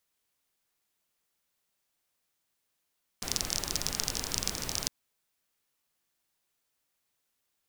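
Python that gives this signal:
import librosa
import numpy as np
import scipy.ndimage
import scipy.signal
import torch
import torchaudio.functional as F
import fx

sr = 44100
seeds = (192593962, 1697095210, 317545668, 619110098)

y = fx.rain(sr, seeds[0], length_s=1.66, drops_per_s=28.0, hz=5500.0, bed_db=-3.0)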